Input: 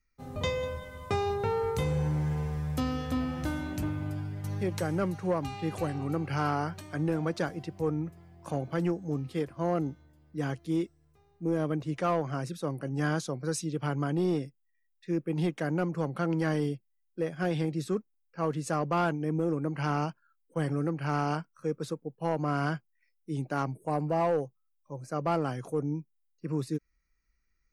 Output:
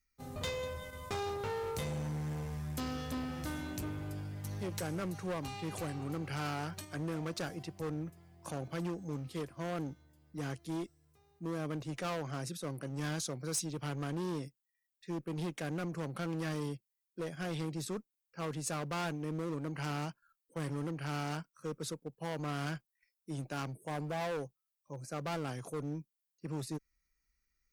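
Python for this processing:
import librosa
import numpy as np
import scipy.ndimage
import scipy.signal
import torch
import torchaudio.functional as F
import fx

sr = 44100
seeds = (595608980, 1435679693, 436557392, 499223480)

p1 = fx.level_steps(x, sr, step_db=23)
p2 = x + (p1 * librosa.db_to_amplitude(-2.0))
p3 = fx.clip_asym(p2, sr, top_db=-31.5, bottom_db=-23.5)
p4 = fx.high_shelf(p3, sr, hz=3600.0, db=9.5)
y = p4 * librosa.db_to_amplitude(-7.0)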